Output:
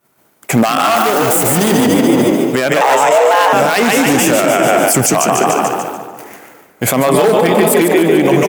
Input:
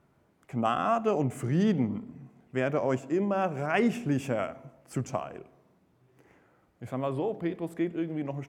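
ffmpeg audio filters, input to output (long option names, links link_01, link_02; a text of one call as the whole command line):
ffmpeg -i in.wav -filter_complex "[0:a]asettb=1/sr,asplit=3[link_01][link_02][link_03];[link_01]atrim=end=0.964[link_04];[link_02]atrim=start=0.96:end=1.51,asetpts=PTS-STARTPTS,afade=type=in:duration=0.004:curve=qsin,afade=type=out:start_time=0.546:duration=0.004:curve=qsin,aeval=exprs='val(0)+0.5*0.0126*sgn(val(0))':channel_layout=same[link_05];[link_03]atrim=start=1.506[link_06];[link_04][link_05]acrossfade=duration=0.004:curve1=hsin:curve2=qsin[link_07];[link_07][link_06]acrossfade=duration=0.004:curve1=qsin:curve2=hsin,asplit=2[link_08][link_09];[link_09]asplit=7[link_10][link_11][link_12][link_13][link_14][link_15][link_16];[link_10]adelay=146,afreqshift=39,volume=-4dB[link_17];[link_11]adelay=292,afreqshift=78,volume=-9.8dB[link_18];[link_12]adelay=438,afreqshift=117,volume=-15.7dB[link_19];[link_13]adelay=584,afreqshift=156,volume=-21.5dB[link_20];[link_14]adelay=730,afreqshift=195,volume=-27.4dB[link_21];[link_15]adelay=876,afreqshift=234,volume=-33.2dB[link_22];[link_16]adelay=1022,afreqshift=273,volume=-39.1dB[link_23];[link_17][link_18][link_19][link_20][link_21][link_22][link_23]amix=inputs=7:normalize=0[link_24];[link_08][link_24]amix=inputs=2:normalize=0,agate=range=-33dB:threshold=-52dB:ratio=3:detection=peak,asettb=1/sr,asplit=3[link_25][link_26][link_27];[link_25]atrim=end=7.134[link_28];[link_26]atrim=start=7.13:end=7.82,asetpts=PTS-STARTPTS,afade=type=in:duration=0.004:curve=qsin,afade=type=out:start_time=0.686:duration=0.004:curve=qsin,aecho=1:1:4.7:0.65,atrim=end_sample=30429[link_29];[link_27]atrim=start=7.816[link_30];[link_28][link_29]acrossfade=duration=0.004:curve1=hsin:curve2=qsin[link_31];[link_31][link_30]acrossfade=duration=0.004:curve1=qsin:curve2=hsin,asoftclip=type=hard:threshold=-22.5dB,asettb=1/sr,asplit=3[link_32][link_33][link_34];[link_32]atrim=end=2.814[link_35];[link_33]atrim=start=2.81:end=3.53,asetpts=PTS-STARTPTS,afade=type=in:duration=0.004:curve=qsin,afade=type=out:start_time=0.716:duration=0.004:curve=qsin,afreqshift=280[link_36];[link_34]atrim=start=3.526[link_37];[link_35][link_36]acrossfade=duration=0.004:curve1=hsin:curve2=qsin[link_38];[link_38][link_37]acrossfade=duration=0.004:curve1=qsin:curve2=hsin,highpass=frequency=390:poles=1,aemphasis=mode=production:type=75fm,asplit=2[link_39][link_40];[link_40]adelay=348,lowpass=frequency=1300:poles=1,volume=-11dB,asplit=2[link_41][link_42];[link_42]adelay=348,lowpass=frequency=1300:poles=1,volume=0.24,asplit=2[link_43][link_44];[link_44]adelay=348,lowpass=frequency=1300:poles=1,volume=0.24[link_45];[link_41][link_43][link_45]amix=inputs=3:normalize=0[link_46];[link_39][link_46]amix=inputs=2:normalize=0,acompressor=threshold=-34dB:ratio=6,alimiter=level_in=32.5dB:limit=-1dB:release=50:level=0:latency=1,volume=-1dB" out.wav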